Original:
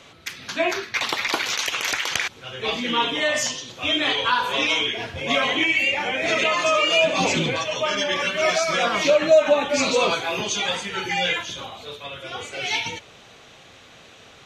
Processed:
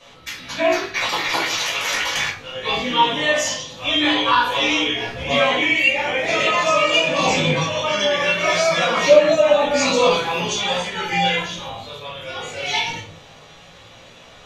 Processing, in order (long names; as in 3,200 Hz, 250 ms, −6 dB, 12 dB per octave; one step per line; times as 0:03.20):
chorus effect 0.2 Hz, delay 16 ms, depth 3.6 ms
rectangular room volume 230 cubic metres, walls furnished, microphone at 5.7 metres
level −4 dB